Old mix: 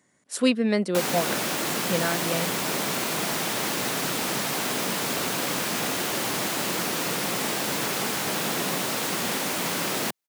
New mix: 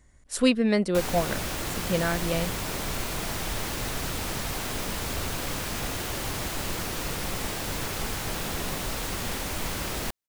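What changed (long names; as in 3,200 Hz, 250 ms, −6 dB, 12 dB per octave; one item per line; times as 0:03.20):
background −5.5 dB
master: remove high-pass filter 160 Hz 24 dB per octave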